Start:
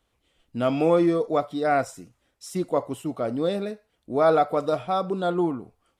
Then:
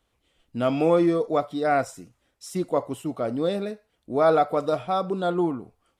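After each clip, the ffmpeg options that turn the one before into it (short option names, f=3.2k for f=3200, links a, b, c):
-af anull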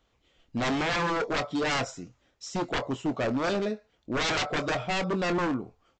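-filter_complex "[0:a]aresample=16000,aeval=exprs='0.0596*(abs(mod(val(0)/0.0596+3,4)-2)-1)':c=same,aresample=44100,asplit=2[a][b];[b]adelay=23,volume=-13dB[c];[a][c]amix=inputs=2:normalize=0,volume=2dB"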